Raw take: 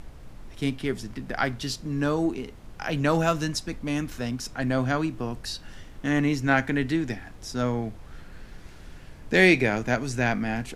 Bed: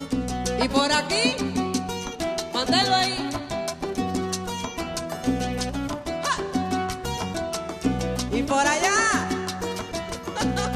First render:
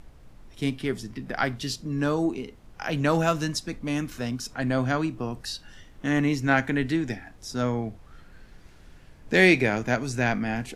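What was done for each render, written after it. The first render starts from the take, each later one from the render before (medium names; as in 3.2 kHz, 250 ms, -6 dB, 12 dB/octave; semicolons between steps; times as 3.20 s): noise print and reduce 6 dB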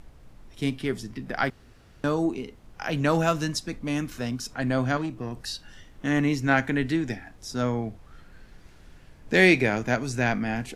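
1.50–2.04 s: room tone; 4.97–5.37 s: valve stage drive 24 dB, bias 0.35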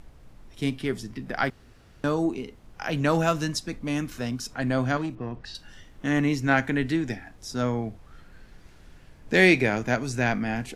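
5.15–5.55 s: low-pass 3 kHz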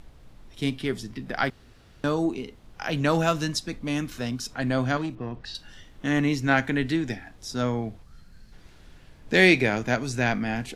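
8.03–8.53 s: time-frequency box 250–4000 Hz -8 dB; peaking EQ 3.7 kHz +4 dB 0.75 oct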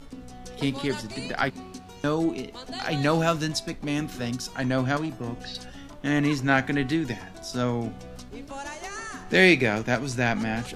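add bed -16 dB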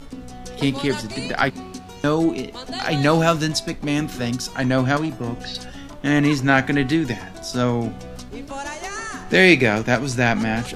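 trim +6 dB; peak limiter -1 dBFS, peak gain reduction 2.5 dB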